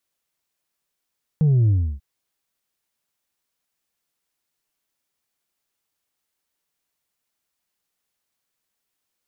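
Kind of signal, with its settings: sub drop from 160 Hz, over 0.59 s, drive 2.5 dB, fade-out 0.31 s, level -14 dB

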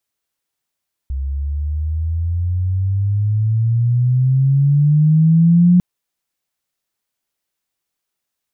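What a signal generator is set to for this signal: sweep logarithmic 66 Hz -> 180 Hz -19 dBFS -> -7 dBFS 4.70 s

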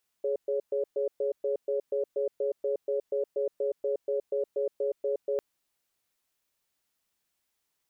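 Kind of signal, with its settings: cadence 418 Hz, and 558 Hz, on 0.12 s, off 0.12 s, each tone -28.5 dBFS 5.15 s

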